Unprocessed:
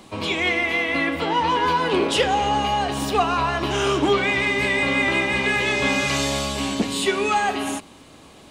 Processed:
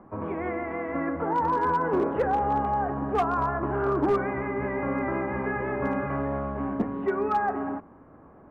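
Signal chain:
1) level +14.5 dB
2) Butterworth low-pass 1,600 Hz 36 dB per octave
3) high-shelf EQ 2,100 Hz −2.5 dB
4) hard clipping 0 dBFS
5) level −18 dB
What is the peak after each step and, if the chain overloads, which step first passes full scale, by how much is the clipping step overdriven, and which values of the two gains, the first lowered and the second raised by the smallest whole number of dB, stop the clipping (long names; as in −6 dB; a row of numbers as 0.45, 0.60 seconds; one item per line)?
+6.0, +6.0, +5.5, 0.0, −18.0 dBFS
step 1, 5.5 dB
step 1 +8.5 dB, step 5 −12 dB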